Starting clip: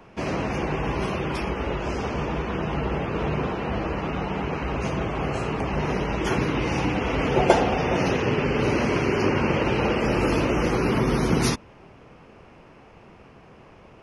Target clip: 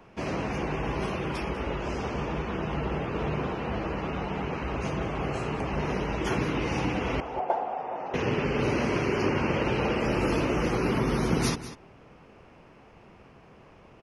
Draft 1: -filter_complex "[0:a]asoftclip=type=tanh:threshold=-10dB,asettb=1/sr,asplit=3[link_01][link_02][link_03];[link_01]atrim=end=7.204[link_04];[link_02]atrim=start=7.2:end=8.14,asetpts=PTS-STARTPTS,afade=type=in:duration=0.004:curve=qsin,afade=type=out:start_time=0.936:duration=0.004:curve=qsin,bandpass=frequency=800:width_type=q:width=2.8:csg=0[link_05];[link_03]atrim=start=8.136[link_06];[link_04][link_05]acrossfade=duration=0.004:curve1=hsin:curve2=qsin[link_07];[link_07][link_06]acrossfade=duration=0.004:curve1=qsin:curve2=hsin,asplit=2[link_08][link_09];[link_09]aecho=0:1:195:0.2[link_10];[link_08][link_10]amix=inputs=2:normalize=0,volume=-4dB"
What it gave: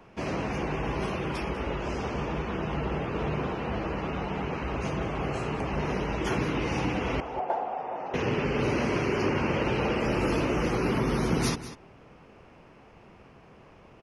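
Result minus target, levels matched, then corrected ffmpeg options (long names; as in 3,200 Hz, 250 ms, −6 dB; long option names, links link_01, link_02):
soft clipping: distortion +14 dB
-filter_complex "[0:a]asoftclip=type=tanh:threshold=0dB,asettb=1/sr,asplit=3[link_01][link_02][link_03];[link_01]atrim=end=7.204[link_04];[link_02]atrim=start=7.2:end=8.14,asetpts=PTS-STARTPTS,afade=type=in:duration=0.004:curve=qsin,afade=type=out:start_time=0.936:duration=0.004:curve=qsin,bandpass=frequency=800:width_type=q:width=2.8:csg=0[link_05];[link_03]atrim=start=8.136[link_06];[link_04][link_05]acrossfade=duration=0.004:curve1=hsin:curve2=qsin[link_07];[link_07][link_06]acrossfade=duration=0.004:curve1=qsin:curve2=hsin,asplit=2[link_08][link_09];[link_09]aecho=0:1:195:0.2[link_10];[link_08][link_10]amix=inputs=2:normalize=0,volume=-4dB"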